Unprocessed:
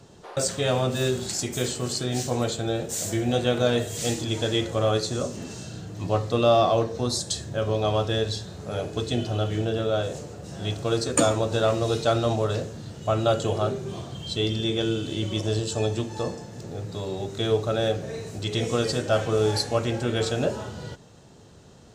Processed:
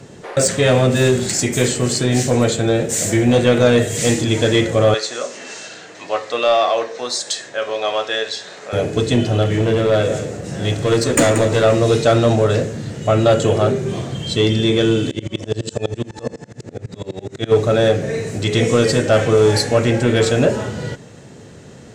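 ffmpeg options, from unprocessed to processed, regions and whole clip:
-filter_complex "[0:a]asettb=1/sr,asplit=3[s0][s1][s2];[s0]atrim=end=4.944[s3];[s1]atrim=start=4.94:end=8.73,asetpts=PTS-STARTPTS,afade=t=in:d=0.004:c=qsin,afade=t=out:st=3.786:d=0.004:c=qsin,acompressor=mode=upward:threshold=0.0355:ratio=2.5:attack=3.2:release=140:knee=2.83:detection=peak,highpass=760,lowpass=6400[s4];[s2]atrim=start=8.726[s5];[s3][s4]acrossfade=d=0.004:c1=hsin:c2=qsin[s6];[s6][s5]acrossfade=d=0.004:c1=qsin:c2=hsin,asettb=1/sr,asplit=3[s7][s8][s9];[s7]atrim=end=9.424[s10];[s8]atrim=start=9.42:end=11.64,asetpts=PTS-STARTPTS,afade=t=in:d=0.004:c=qsin,afade=t=out:st=2.216:d=0.004:c=qsin,aeval=exprs='clip(val(0),-1,0.0708)':c=same,aecho=1:1:182:0.266,atrim=end_sample=97902[s11];[s9]atrim=start=11.636[s12];[s10][s11]acrossfade=d=0.004:c1=hsin:c2=qsin[s13];[s13][s12]acrossfade=d=0.004:c1=qsin:c2=hsin,asettb=1/sr,asplit=3[s14][s15][s16];[s14]atrim=end=15.114[s17];[s15]atrim=start=15.11:end=17.52,asetpts=PTS-STARTPTS,afade=t=in:d=0.004:c=qsin,afade=t=out:st=2.406:d=0.004:c=qsin,lowpass=9700,aeval=exprs='val(0)*pow(10,-30*if(lt(mod(-12*n/s,1),2*abs(-12)/1000),1-mod(-12*n/s,1)/(2*abs(-12)/1000),(mod(-12*n/s,1)-2*abs(-12)/1000)/(1-2*abs(-12)/1000))/20)':c=same[s18];[s16]atrim=start=17.516[s19];[s17][s18]acrossfade=d=0.004:c1=hsin:c2=qsin[s20];[s20][s19]acrossfade=d=0.004:c1=qsin:c2=hsin,equalizer=f=125:t=o:w=1:g=7,equalizer=f=250:t=o:w=1:g=7,equalizer=f=500:t=o:w=1:g=7,equalizer=f=2000:t=o:w=1:g=12,equalizer=f=8000:t=o:w=1:g=7,acontrast=62,volume=0.708"

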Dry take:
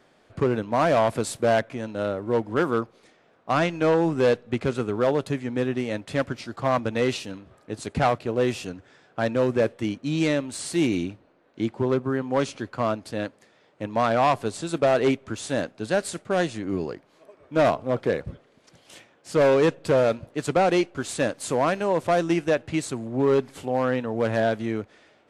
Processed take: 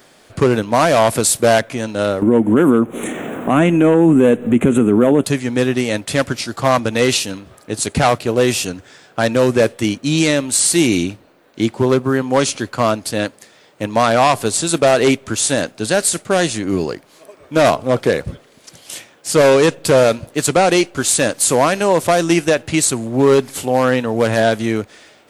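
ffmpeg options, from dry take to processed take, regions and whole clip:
-filter_complex "[0:a]asettb=1/sr,asplit=3[s0][s1][s2];[s0]atrim=end=2.224[s3];[s1]atrim=start=2.22:end=5.24,asetpts=PTS-STARTPTS,afade=t=in:d=0.004:c=qsin,afade=t=out:st=3.016:d=0.004:c=qsin,equalizer=f=250:t=o:w=1.4:g=14,acompressor=mode=upward:threshold=0.141:ratio=2.5:attack=3.2:release=140:knee=2.83:detection=peak,asuperstop=centerf=4800:order=4:qfactor=1.1[s4];[s2]atrim=start=5.236[s5];[s3][s4]acrossfade=d=0.004:c1=hsin:c2=qsin[s6];[s6][s5]acrossfade=d=0.004:c1=qsin:c2=hsin,aemphasis=mode=production:type=75kf,alimiter=level_in=3.98:limit=0.891:release=50:level=0:latency=1,volume=0.708"

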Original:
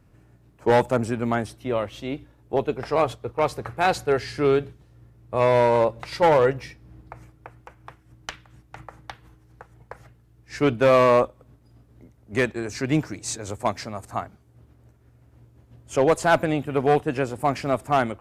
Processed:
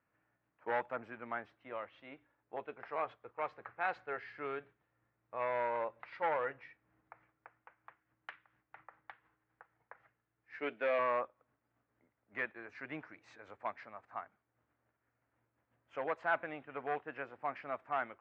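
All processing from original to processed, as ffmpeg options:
-filter_complex "[0:a]asettb=1/sr,asplit=3[s0][s1][s2];[s0]atrim=end=10.594[s3];[s1]atrim=start=10.59:end=10.99,asetpts=PTS-STARTPTS,afade=t=in:d=0.004:c=qsin,afade=t=out:st=0.396:d=0.004:c=qsin,equalizer=f=1100:w=1.9:g=-13,acontrast=33,highpass=290,lowpass=7100[s4];[s2]atrim=start=10.986[s5];[s3][s4]acrossfade=d=0.004:c1=hsin:c2=qsin[s6];[s6][s5]acrossfade=d=0.004:c1=qsin:c2=hsin,lowpass=f=1900:w=0.5412,lowpass=f=1900:w=1.3066,aderivative,bandreject=f=390:w=12,volume=1.5"

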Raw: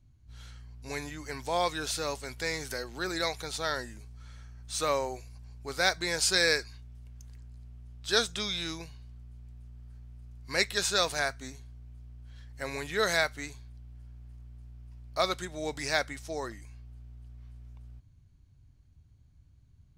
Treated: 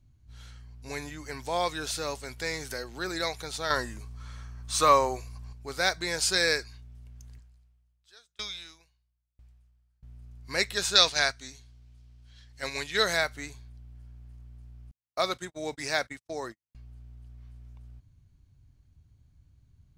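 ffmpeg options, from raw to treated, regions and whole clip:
-filter_complex "[0:a]asettb=1/sr,asplit=3[s0][s1][s2];[s0]atrim=end=3.704[s3];[s1]atrim=start=3.7:end=5.53,asetpts=PTS-STARTPTS,afade=t=in:d=0.004:c=qsin,afade=t=out:st=1.826:d=0.004:c=qsin,equalizer=f=1100:t=o:w=0.28:g=10,acontrast=29[s4];[s2]atrim=start=5.526[s5];[s3][s4]acrossfade=d=0.004:c1=hsin:c2=qsin[s6];[s6][s5]acrossfade=d=0.004:c1=qsin:c2=hsin,asettb=1/sr,asplit=3[s7][s8][s9];[s7]atrim=end=7.394[s10];[s8]atrim=start=7.39:end=10.03,asetpts=PTS-STARTPTS,afade=t=in:d=0.004:c=qsin,afade=t=out:st=2.636:d=0.004:c=qsin,equalizer=f=200:w=0.5:g=-13.5,aeval=exprs='val(0)*pow(10,-36*if(lt(mod(1*n/s,1),2*abs(1)/1000),1-mod(1*n/s,1)/(2*abs(1)/1000),(mod(1*n/s,1)-2*abs(1)/1000)/(1-2*abs(1)/1000))/20)':c=same[s11];[s9]atrim=start=10.026[s12];[s10][s11]acrossfade=d=0.004:c1=hsin:c2=qsin[s13];[s13][s12]acrossfade=d=0.004:c1=qsin:c2=hsin,asettb=1/sr,asplit=3[s14][s15][s16];[s14]atrim=end=10.954[s17];[s15]atrim=start=10.95:end=13.03,asetpts=PTS-STARTPTS,afade=t=in:d=0.004:c=qsin,afade=t=out:st=2.076:d=0.004:c=qsin,acrossover=split=6400[s18][s19];[s19]acompressor=threshold=0.00355:ratio=4:attack=1:release=60[s20];[s18][s20]amix=inputs=2:normalize=0,agate=range=0.501:threshold=0.0141:ratio=16:release=100:detection=peak,equalizer=f=4500:t=o:w=2.2:g=11.5[s21];[s16]atrim=start=13.026[s22];[s17][s21]acrossfade=d=0.004:c1=hsin:c2=qsin[s23];[s23][s22]acrossfade=d=0.004:c1=qsin:c2=hsin,asettb=1/sr,asplit=3[s24][s25][s26];[s24]atrim=end=14.914[s27];[s25]atrim=start=14.91:end=16.75,asetpts=PTS-STARTPTS,afade=t=in:d=0.004:c=qsin,afade=t=out:st=1.836:d=0.004:c=qsin,highpass=120,agate=range=0.00282:threshold=0.00708:ratio=16:release=100:detection=peak[s28];[s26]atrim=start=16.746[s29];[s27][s28]acrossfade=d=0.004:c1=hsin:c2=qsin[s30];[s30][s29]acrossfade=d=0.004:c1=qsin:c2=hsin"

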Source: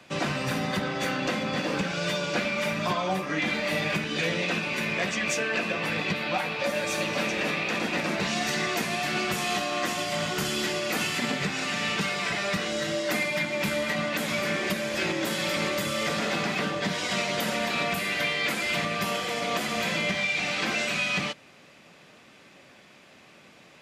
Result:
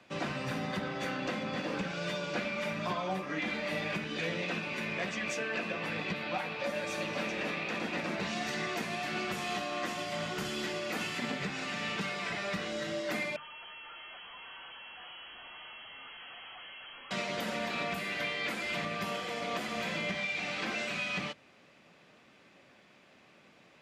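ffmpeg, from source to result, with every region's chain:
-filter_complex "[0:a]asettb=1/sr,asplit=3[s0][s1][s2];[s0]atrim=end=13.364[s3];[s1]atrim=start=13.36:end=17.11,asetpts=PTS-STARTPTS,afade=t=in:d=0.004:c=qsin,afade=t=out:st=3.746:d=0.004:c=qsin,aeval=exprs='(tanh(89.1*val(0)+0.35)-tanh(0.35))/89.1':c=same,lowpass=f=2800:t=q:w=0.5098,lowpass=f=2800:t=q:w=0.6013,lowpass=f=2800:t=q:w=0.9,lowpass=f=2800:t=q:w=2.563,afreqshift=-3300[s4];[s2]atrim=start=17.106[s5];[s3][s4]acrossfade=d=0.004:c1=hsin:c2=qsin[s6];[s6][s5]acrossfade=d=0.004:c1=qsin:c2=hsin,highshelf=f=6100:g=-9,bandreject=f=50:t=h:w=6,bandreject=f=100:t=h:w=6,bandreject=f=150:t=h:w=6,volume=0.473"

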